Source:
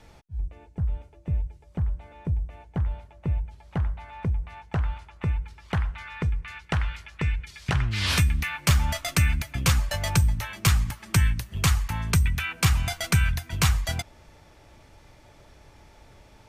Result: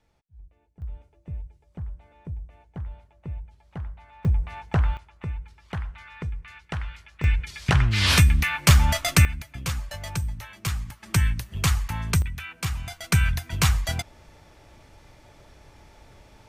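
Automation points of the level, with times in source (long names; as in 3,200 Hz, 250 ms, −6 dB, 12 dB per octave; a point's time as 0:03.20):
−17 dB
from 0:00.82 −8 dB
from 0:04.25 +4.5 dB
from 0:04.97 −5.5 dB
from 0:07.24 +5 dB
from 0:09.25 −7.5 dB
from 0:11.03 −0.5 dB
from 0:12.22 −7.5 dB
from 0:13.12 +1 dB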